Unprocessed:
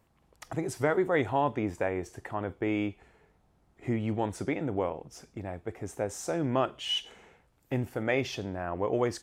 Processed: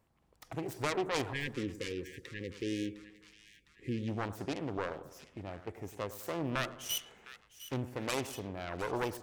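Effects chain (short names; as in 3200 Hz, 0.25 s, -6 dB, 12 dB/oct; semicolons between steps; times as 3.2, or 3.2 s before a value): self-modulated delay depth 0.65 ms; spectral delete 1.33–4.08, 540–1600 Hz; split-band echo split 1400 Hz, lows 0.102 s, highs 0.707 s, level -14 dB; gain -5.5 dB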